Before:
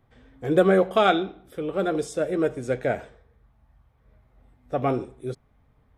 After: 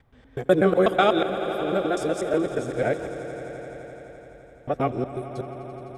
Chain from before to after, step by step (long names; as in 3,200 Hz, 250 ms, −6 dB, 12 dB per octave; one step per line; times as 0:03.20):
reversed piece by piece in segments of 123 ms
echo that builds up and dies away 85 ms, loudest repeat 5, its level −16.5 dB